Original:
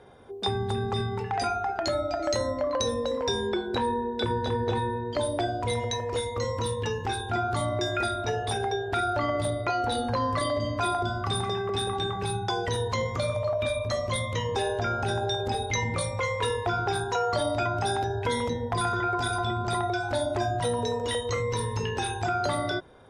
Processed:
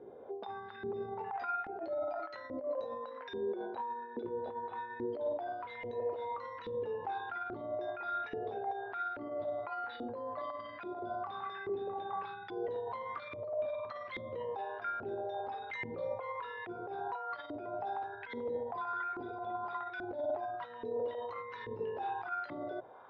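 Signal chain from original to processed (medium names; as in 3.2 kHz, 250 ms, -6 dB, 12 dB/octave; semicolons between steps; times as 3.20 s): inverse Chebyshev low-pass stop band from 8.1 kHz, stop band 40 dB; hum notches 60/120 Hz; compressor with a negative ratio -31 dBFS, ratio -0.5; peak limiter -27.5 dBFS, peak gain reduction 9 dB; LFO band-pass saw up 1.2 Hz 320–2000 Hz; trim +3 dB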